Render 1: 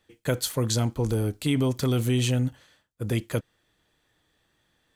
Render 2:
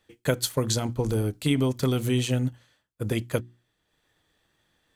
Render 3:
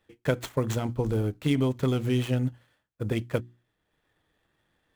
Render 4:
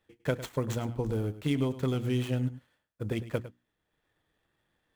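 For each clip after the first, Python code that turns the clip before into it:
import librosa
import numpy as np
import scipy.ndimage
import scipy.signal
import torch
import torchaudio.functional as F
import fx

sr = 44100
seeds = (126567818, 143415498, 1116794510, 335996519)

y1 = fx.hum_notches(x, sr, base_hz=60, count=6)
y1 = fx.transient(y1, sr, attack_db=3, sustain_db=-5)
y2 = scipy.signal.medfilt(y1, 9)
y2 = y2 * librosa.db_to_amplitude(-1.0)
y3 = y2 + 10.0 ** (-15.0 / 20.0) * np.pad(y2, (int(104 * sr / 1000.0), 0))[:len(y2)]
y3 = y3 * librosa.db_to_amplitude(-4.0)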